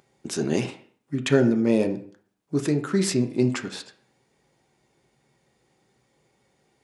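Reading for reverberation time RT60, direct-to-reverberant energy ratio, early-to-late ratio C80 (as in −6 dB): 0.50 s, 6.0 dB, 16.5 dB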